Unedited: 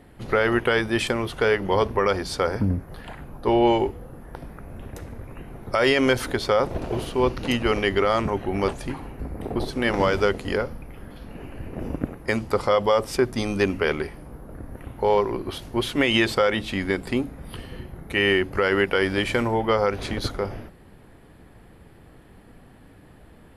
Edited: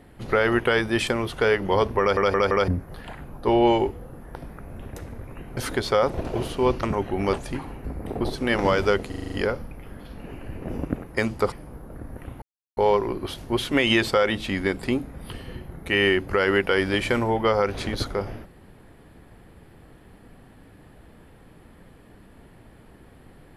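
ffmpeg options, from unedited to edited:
-filter_complex "[0:a]asplit=15[s0][s1][s2][s3][s4][s5][s6][s7][s8][s9][s10][s11][s12][s13][s14];[s0]atrim=end=2.172[s15];[s1]atrim=start=1.998:end=2.172[s16];[s2]atrim=start=1.998:end=2.172[s17];[s3]atrim=start=1.998:end=2.172[s18];[s4]atrim=start=2.678:end=5.572[s19];[s5]atrim=start=6.138:end=7.402[s20];[s6]atrim=start=8.178:end=10.472[s21];[s7]atrim=start=10.428:end=10.472[s22];[s8]atrim=start=10.428:end=10.472[s23];[s9]atrim=start=10.428:end=10.472[s24];[s10]atrim=start=10.428:end=10.472[s25];[s11]atrim=start=10.428:end=10.472[s26];[s12]atrim=start=10.428:end=12.632[s27];[s13]atrim=start=14.108:end=15.01,asetpts=PTS-STARTPTS,afade=t=out:st=0.898:d=0.004:c=hsin,apad=pad_dur=0.35[s28];[s14]atrim=start=15.01,asetpts=PTS-STARTPTS,afade=t=in:d=0.004:c=hsin[s29];[s15][s16]acrossfade=d=0.004:c1=hsin:c2=hsin[s30];[s30][s17]acrossfade=d=0.004:c1=hsin:c2=hsin[s31];[s31][s18]acrossfade=d=0.004:c1=hsin:c2=hsin[s32];[s32][s19]acrossfade=d=0.004:c1=hsin:c2=hsin[s33];[s33][s20]acrossfade=d=0.004:c1=hsin:c2=hsin[s34];[s34][s21]acrossfade=d=0.004:c1=hsin:c2=hsin[s35];[s35][s22]acrossfade=d=0.004:c1=hsin:c2=hsin[s36];[s36][s23]acrossfade=d=0.004:c1=hsin:c2=hsin[s37];[s37][s24]acrossfade=d=0.004:c1=hsin:c2=hsin[s38];[s38][s25]acrossfade=d=0.004:c1=hsin:c2=hsin[s39];[s39][s26]acrossfade=d=0.004:c1=hsin:c2=hsin[s40];[s40][s27]acrossfade=d=0.004:c1=hsin:c2=hsin[s41];[s28][s29]concat=n=2:v=0:a=1[s42];[s41][s42]acrossfade=d=0.004:c1=hsin:c2=hsin"

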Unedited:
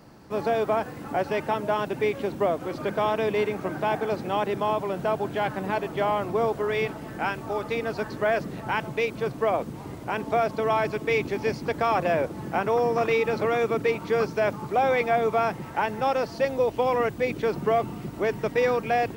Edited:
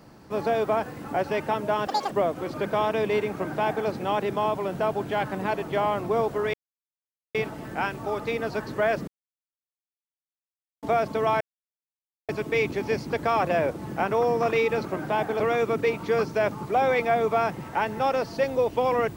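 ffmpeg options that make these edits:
-filter_complex "[0:a]asplit=9[s0][s1][s2][s3][s4][s5][s6][s7][s8];[s0]atrim=end=1.874[s9];[s1]atrim=start=1.87:end=2.36,asetpts=PTS-STARTPTS,asetrate=87759,aresample=44100[s10];[s2]atrim=start=2.356:end=6.78,asetpts=PTS-STARTPTS,afade=t=out:st=4.42:d=0.004:c=hsin,apad=pad_dur=0.81[s11];[s3]atrim=start=6.78:end=8.51,asetpts=PTS-STARTPTS,afade=t=in:d=0.004:c=hsin,afade=t=out:st=1.726:d=0.004:c=hsin[s12];[s4]atrim=start=8.51:end=10.26,asetpts=PTS-STARTPTS,volume=0[s13];[s5]atrim=start=10.26:end=10.84,asetpts=PTS-STARTPTS,afade=t=in:d=0.004:c=hsin,afade=t=out:st=0.576:d=0.004:c=hsin,apad=pad_dur=0.88[s14];[s6]atrim=start=10.84:end=13.412,asetpts=PTS-STARTPTS,afade=t=in:d=0.004:c=hsin[s15];[s7]atrim=start=3.578:end=4.122[s16];[s8]atrim=start=13.408[s17];[s9][s10]acrossfade=d=0.004:c1=hsin:c2=hsin[s18];[s11][s12][s13][s14][s15]concat=n=5:v=0:a=1[s19];[s18][s19]acrossfade=d=0.004:c1=hsin:c2=hsin[s20];[s20][s16]acrossfade=d=0.004:c1=hsin:c2=hsin[s21];[s21][s17]acrossfade=d=0.004:c1=hsin:c2=hsin"

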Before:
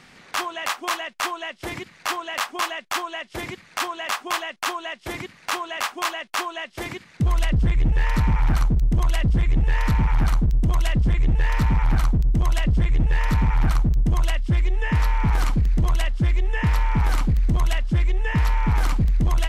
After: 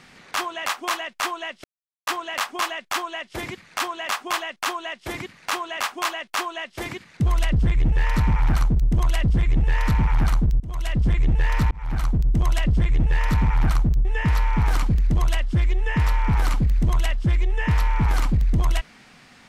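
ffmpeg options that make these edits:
-filter_complex "[0:a]asplit=6[s0][s1][s2][s3][s4][s5];[s0]atrim=end=1.64,asetpts=PTS-STARTPTS,afade=t=out:st=1.636:d=0.004:c=hsin[s6];[s1]atrim=start=1.64:end=2.07,asetpts=PTS-STARTPTS,volume=0[s7];[s2]atrim=start=2.07:end=10.6,asetpts=PTS-STARTPTS,afade=t=in:d=0.004:c=hsin,afade=t=out:st=8.526:d=0.004:c=hsin:silence=0.0794328[s8];[s3]atrim=start=10.6:end=11.71,asetpts=PTS-STARTPTS,afade=t=in:d=0.45:silence=0.0794328,afade=t=out:st=1.106:d=0.004:c=hsin[s9];[s4]atrim=start=11.71:end=14.052,asetpts=PTS-STARTPTS,afade=t=in:d=0.65:c=qsin[s10];[s5]atrim=start=14.718[s11];[s6][s7][s8][s9][s10]concat=n=5:v=0:a=1[s12];[s12][s11]acrossfade=d=0.004:c1=hsin:c2=hsin"

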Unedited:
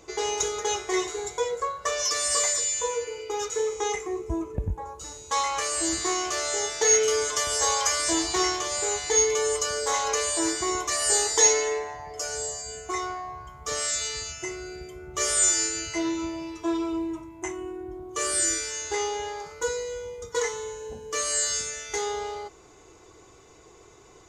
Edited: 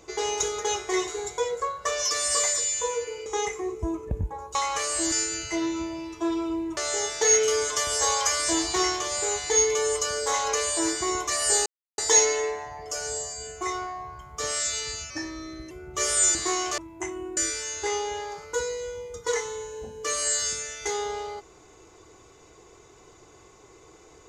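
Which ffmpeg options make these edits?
-filter_complex "[0:a]asplit=11[s0][s1][s2][s3][s4][s5][s6][s7][s8][s9][s10];[s0]atrim=end=3.262[s11];[s1]atrim=start=3.728:end=5.022[s12];[s2]atrim=start=5.368:end=5.942[s13];[s3]atrim=start=15.548:end=17.202[s14];[s4]atrim=start=6.368:end=11.26,asetpts=PTS-STARTPTS,afade=t=out:st=4.888:d=0.004:c=hsin,apad=pad_dur=0.32[s15];[s5]atrim=start=11.26:end=14.384,asetpts=PTS-STARTPTS,afade=t=in:d=0.004:c=hsin[s16];[s6]atrim=start=14.38:end=14.91,asetpts=PTS-STARTPTS,asetrate=38367,aresample=44100[s17];[s7]atrim=start=14.906:end=15.552[s18];[s8]atrim=start=5.938:end=6.372[s19];[s9]atrim=start=17.198:end=17.792[s20];[s10]atrim=start=18.448[s21];[s11][s12]acrossfade=d=0.004:c1=hsin:c2=hsin[s22];[s22][s13]acrossfade=d=0.004:c1=hsin:c2=hsin[s23];[s23][s14]acrossfade=d=0.004:c1=hsin:c2=hsin[s24];[s15][s16]concat=n=2:v=0:a=1[s25];[s24][s25]acrossfade=d=0.004:c1=hsin:c2=hsin[s26];[s26][s17]acrossfade=d=0.004:c1=hsin:c2=hsin[s27];[s27][s18]acrossfade=d=0.004:c1=hsin:c2=hsin[s28];[s28][s19]acrossfade=d=0.004:c1=hsin:c2=hsin[s29];[s29][s20]acrossfade=d=0.004:c1=hsin:c2=hsin[s30];[s30][s21]acrossfade=d=0.004:c1=hsin:c2=hsin"

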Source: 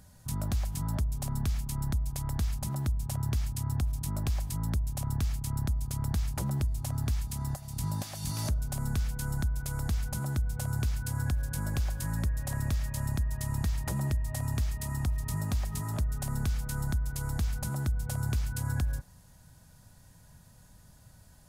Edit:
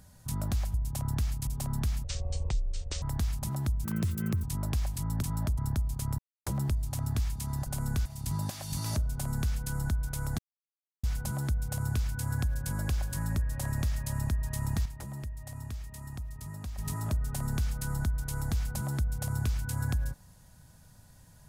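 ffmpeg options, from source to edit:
-filter_complex "[0:a]asplit=16[s0][s1][s2][s3][s4][s5][s6][s7][s8][s9][s10][s11][s12][s13][s14][s15];[s0]atrim=end=0.742[s16];[s1]atrim=start=4.758:end=5.492[s17];[s2]atrim=start=1.088:end=1.664[s18];[s3]atrim=start=1.66:end=2.22,asetpts=PTS-STARTPTS,asetrate=25137,aresample=44100,atrim=end_sample=43326,asetpts=PTS-STARTPTS[s19];[s4]atrim=start=2.216:end=3.044[s20];[s5]atrim=start=3.04:end=3.97,asetpts=PTS-STARTPTS,asetrate=69237,aresample=44100[s21];[s6]atrim=start=3.966:end=4.762[s22];[s7]atrim=start=0.738:end=1.092[s23];[s8]atrim=start=5.488:end=6.1,asetpts=PTS-STARTPTS,afade=t=out:st=0.608:d=0.004:c=hsin[s24];[s9]atrim=start=6.1:end=6.38,asetpts=PTS-STARTPTS,volume=0[s25];[s10]atrim=start=6.38:end=7.582,asetpts=PTS-STARTPTS,afade=t=in:d=0.004:c=hsin[s26];[s11]atrim=start=8.658:end=9.052[s27];[s12]atrim=start=7.578:end=9.91,asetpts=PTS-STARTPTS,afade=t=out:st=2.328:d=0.004:c=hsin,apad=pad_dur=0.65[s28];[s13]atrim=start=9.91:end=13.732,asetpts=PTS-STARTPTS,afade=t=in:d=0.004:c=hsin[s29];[s14]atrim=start=13.728:end=15.662,asetpts=PTS-STARTPTS,volume=0.355[s30];[s15]atrim=start=15.658[s31];[s16][s17]acrossfade=d=0.004:c1=hsin:c2=hsin[s32];[s32][s18]acrossfade=d=0.004:c1=hsin:c2=hsin[s33];[s33][s19]acrossfade=d=0.004:c1=hsin:c2=hsin[s34];[s34][s20]acrossfade=d=0.004:c1=hsin:c2=hsin[s35];[s35][s21]acrossfade=d=0.004:c1=hsin:c2=hsin[s36];[s36][s22]acrossfade=d=0.004:c1=hsin:c2=hsin[s37];[s37][s23]acrossfade=d=0.004:c1=hsin:c2=hsin[s38];[s24][s25][s26]concat=n=3:v=0:a=1[s39];[s38][s39]acrossfade=d=0.004:c1=hsin:c2=hsin[s40];[s40][s27]acrossfade=d=0.004:c1=hsin:c2=hsin[s41];[s28][s29]concat=n=2:v=0:a=1[s42];[s41][s42]acrossfade=d=0.004:c1=hsin:c2=hsin[s43];[s43][s30]acrossfade=d=0.004:c1=hsin:c2=hsin[s44];[s44][s31]acrossfade=d=0.004:c1=hsin:c2=hsin"

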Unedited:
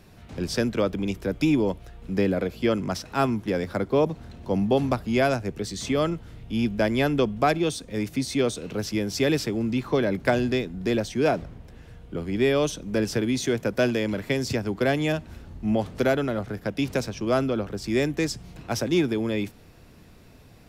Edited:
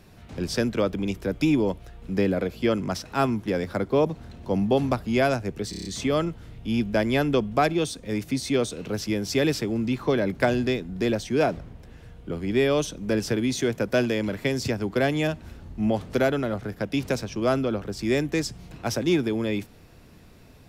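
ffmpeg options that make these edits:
-filter_complex "[0:a]asplit=6[s0][s1][s2][s3][s4][s5];[s0]atrim=end=5.732[s6];[s1]atrim=start=5.698:end=5.732[s7];[s2]atrim=start=5.698:end=5.732[s8];[s3]atrim=start=5.698:end=5.732[s9];[s4]atrim=start=5.698:end=5.732[s10];[s5]atrim=start=5.698[s11];[s6][s7]acrossfade=d=0.004:c1=hsin:c2=hsin[s12];[s12][s8]acrossfade=d=0.004:c1=hsin:c2=hsin[s13];[s13][s9]acrossfade=d=0.004:c1=hsin:c2=hsin[s14];[s14][s10]acrossfade=d=0.004:c1=hsin:c2=hsin[s15];[s15][s11]acrossfade=d=0.004:c1=hsin:c2=hsin"

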